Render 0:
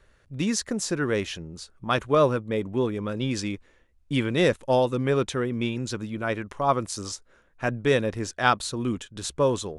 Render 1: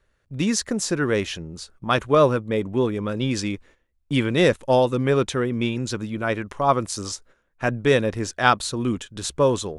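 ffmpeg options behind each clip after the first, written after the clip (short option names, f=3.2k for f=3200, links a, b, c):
-af "agate=range=-11dB:threshold=-52dB:ratio=16:detection=peak,volume=3.5dB"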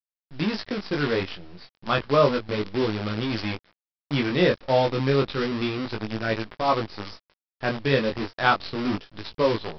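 -af "aresample=11025,acrusher=bits=5:dc=4:mix=0:aa=0.000001,aresample=44100,flanger=delay=18:depth=4.3:speed=0.31"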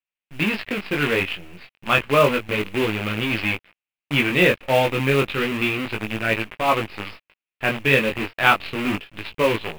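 -af "apsyclip=8.5dB,lowpass=f=2.6k:t=q:w=4.2,acrusher=bits=5:mode=log:mix=0:aa=0.000001,volume=-7dB"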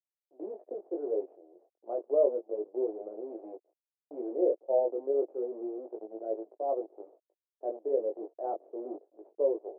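-af "asuperpass=centerf=490:order=8:qfactor=1.3,volume=-6.5dB"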